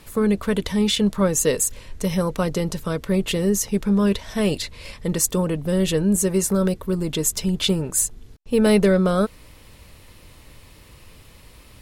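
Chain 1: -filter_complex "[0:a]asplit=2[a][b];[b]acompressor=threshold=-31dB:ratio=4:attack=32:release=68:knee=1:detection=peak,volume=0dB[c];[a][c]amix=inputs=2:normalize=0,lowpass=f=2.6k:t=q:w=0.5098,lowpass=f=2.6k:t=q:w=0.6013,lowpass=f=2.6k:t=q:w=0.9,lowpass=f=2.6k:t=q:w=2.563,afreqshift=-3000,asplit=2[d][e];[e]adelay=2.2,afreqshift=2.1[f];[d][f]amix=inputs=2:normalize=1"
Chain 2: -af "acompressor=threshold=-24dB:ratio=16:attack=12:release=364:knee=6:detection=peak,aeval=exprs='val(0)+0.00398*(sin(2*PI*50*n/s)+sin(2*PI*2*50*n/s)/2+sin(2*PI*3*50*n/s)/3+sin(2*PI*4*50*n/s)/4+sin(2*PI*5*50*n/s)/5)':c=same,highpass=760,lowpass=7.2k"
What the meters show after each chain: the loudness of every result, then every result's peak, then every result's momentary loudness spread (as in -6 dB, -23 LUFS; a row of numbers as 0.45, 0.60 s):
-19.0, -36.0 LUFS; -6.0, -14.5 dBFS; 10, 20 LU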